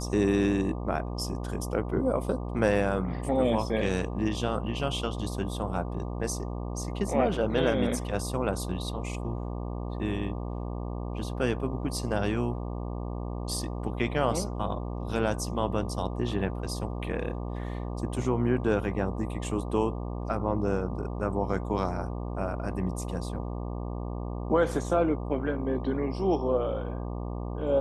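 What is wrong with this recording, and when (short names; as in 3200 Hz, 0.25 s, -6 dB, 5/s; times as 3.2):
buzz 60 Hz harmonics 20 -34 dBFS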